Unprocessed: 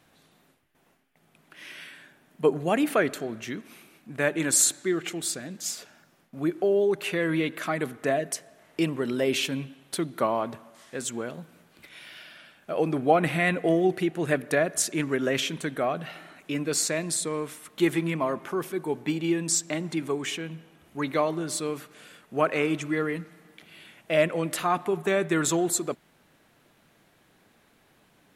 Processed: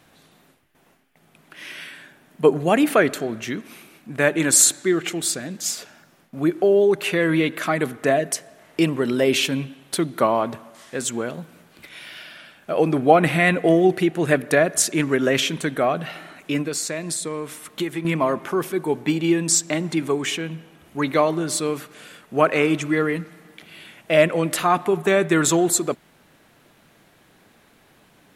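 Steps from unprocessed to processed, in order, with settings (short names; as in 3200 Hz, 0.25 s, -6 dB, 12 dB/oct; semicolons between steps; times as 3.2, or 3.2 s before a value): 16.61–18.05 compressor 4:1, threshold -31 dBFS, peak gain reduction 12 dB; gain +6.5 dB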